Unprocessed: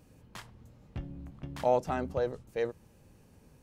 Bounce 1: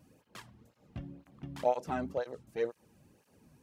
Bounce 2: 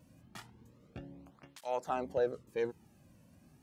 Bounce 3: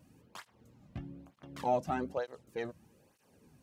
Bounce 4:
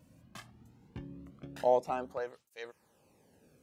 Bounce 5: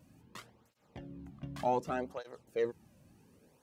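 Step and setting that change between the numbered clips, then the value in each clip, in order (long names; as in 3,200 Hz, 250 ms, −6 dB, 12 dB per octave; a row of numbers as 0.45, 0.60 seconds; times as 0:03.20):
through-zero flanger with one copy inverted, nulls at: 2, 0.31, 1.1, 0.2, 0.67 Hertz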